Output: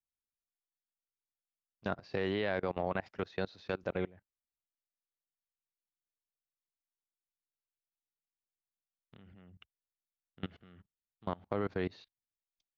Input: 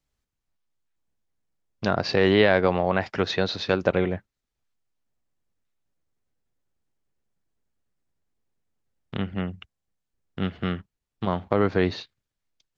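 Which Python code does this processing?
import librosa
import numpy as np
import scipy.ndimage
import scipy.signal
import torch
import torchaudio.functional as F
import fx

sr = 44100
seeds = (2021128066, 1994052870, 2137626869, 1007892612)

y = fx.level_steps(x, sr, step_db=24)
y = F.gain(torch.from_numpy(y), -9.0).numpy()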